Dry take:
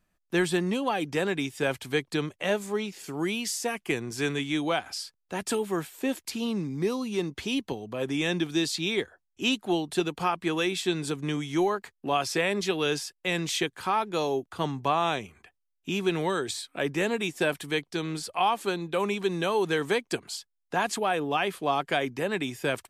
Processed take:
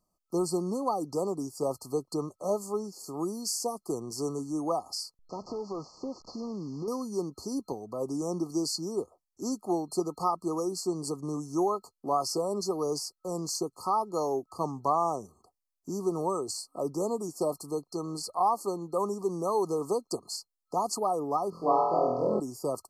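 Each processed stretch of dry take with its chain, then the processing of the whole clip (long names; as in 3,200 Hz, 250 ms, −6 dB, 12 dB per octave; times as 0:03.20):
0:05.19–0:06.88: linear delta modulator 32 kbit/s, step −44 dBFS + downward compressor 4 to 1, threshold −29 dBFS
0:21.50–0:22.40: high-frequency loss of the air 270 metres + flutter between parallel walls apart 4.1 metres, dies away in 1.1 s
whole clip: brick-wall band-stop 1,300–4,200 Hz; low-shelf EQ 240 Hz −8 dB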